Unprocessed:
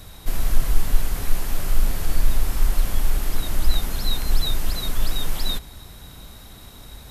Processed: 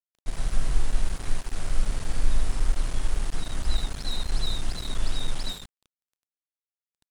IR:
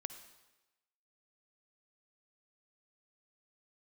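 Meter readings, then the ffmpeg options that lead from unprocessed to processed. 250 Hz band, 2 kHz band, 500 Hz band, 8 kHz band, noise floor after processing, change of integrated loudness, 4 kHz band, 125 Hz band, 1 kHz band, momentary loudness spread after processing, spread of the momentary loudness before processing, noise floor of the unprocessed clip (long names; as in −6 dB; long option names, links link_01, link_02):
−5.0 dB, −5.0 dB, −5.0 dB, −6.0 dB, below −85 dBFS, −5.5 dB, −5.0 dB, −5.0 dB, −5.0 dB, 5 LU, 17 LU, −43 dBFS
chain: -af "aresample=22050,aresample=44100,aecho=1:1:53|76:0.133|0.631,aeval=exprs='sgn(val(0))*max(abs(val(0))-0.0355,0)':channel_layout=same,volume=-5.5dB"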